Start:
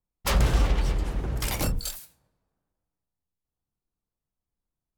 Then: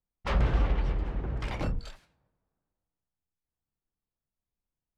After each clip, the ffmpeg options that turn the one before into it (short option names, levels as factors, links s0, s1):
-af "lowpass=2500,volume=0.668"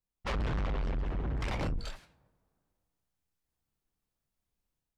-af "dynaudnorm=f=130:g=5:m=2.37,asoftclip=type=tanh:threshold=0.0447,volume=0.75"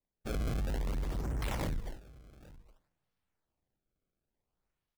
-filter_complex "[0:a]asplit=2[s0][s1];[s1]adelay=816.3,volume=0.1,highshelf=f=4000:g=-18.4[s2];[s0][s2]amix=inputs=2:normalize=0,acrossover=split=120[s3][s4];[s4]acrusher=samples=27:mix=1:aa=0.000001:lfo=1:lforange=43.2:lforate=0.56[s5];[s3][s5]amix=inputs=2:normalize=0,volume=0.841"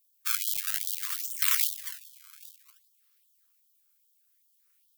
-af "aemphasis=mode=production:type=75fm,afftfilt=real='re*gte(b*sr/1024,980*pow(3100/980,0.5+0.5*sin(2*PI*2.5*pts/sr)))':imag='im*gte(b*sr/1024,980*pow(3100/980,0.5+0.5*sin(2*PI*2.5*pts/sr)))':win_size=1024:overlap=0.75,volume=2.82"